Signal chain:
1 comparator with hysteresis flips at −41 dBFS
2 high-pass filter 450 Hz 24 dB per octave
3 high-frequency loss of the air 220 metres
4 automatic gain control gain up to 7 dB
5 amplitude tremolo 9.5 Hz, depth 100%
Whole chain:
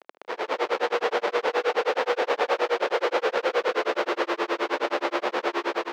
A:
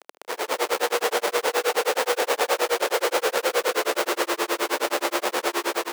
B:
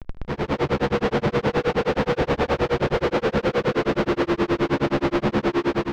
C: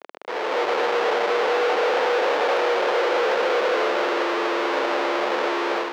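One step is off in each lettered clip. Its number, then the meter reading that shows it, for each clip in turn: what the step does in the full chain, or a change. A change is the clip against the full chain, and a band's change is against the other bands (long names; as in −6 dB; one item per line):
3, 4 kHz band +5.0 dB
2, 250 Hz band +12.5 dB
5, change in crest factor −4.0 dB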